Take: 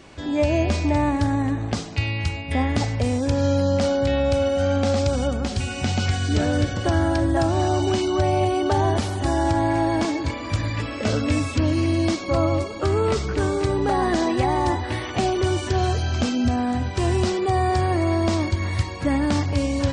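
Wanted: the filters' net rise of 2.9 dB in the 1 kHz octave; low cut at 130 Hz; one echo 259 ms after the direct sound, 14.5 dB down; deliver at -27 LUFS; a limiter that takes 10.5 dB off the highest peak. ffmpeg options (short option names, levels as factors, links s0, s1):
-af "highpass=130,equalizer=f=1000:t=o:g=4,alimiter=limit=0.112:level=0:latency=1,aecho=1:1:259:0.188,volume=1.06"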